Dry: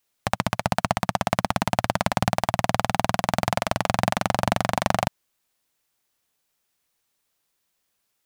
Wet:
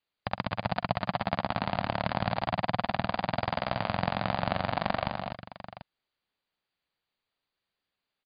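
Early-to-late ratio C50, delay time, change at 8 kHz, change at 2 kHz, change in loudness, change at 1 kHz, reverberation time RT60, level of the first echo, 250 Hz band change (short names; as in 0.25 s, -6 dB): none, 45 ms, under -40 dB, -6.0 dB, -6.5 dB, -6.0 dB, none, -16.0 dB, -6.0 dB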